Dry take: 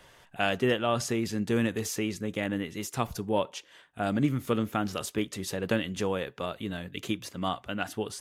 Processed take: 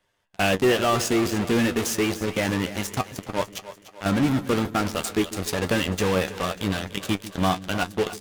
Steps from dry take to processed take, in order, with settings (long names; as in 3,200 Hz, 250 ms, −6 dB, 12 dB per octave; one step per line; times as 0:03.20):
0:03.01–0:04.06: volume swells 183 ms
power curve on the samples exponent 1.4
in parallel at −7 dB: fuzz pedal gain 43 dB, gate −43 dBFS
on the sum: flanger 0.29 Hz, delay 9.9 ms, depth 2.3 ms, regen +44%
echo with a time of its own for lows and highs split 370 Hz, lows 145 ms, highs 295 ms, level −14 dB
level +4 dB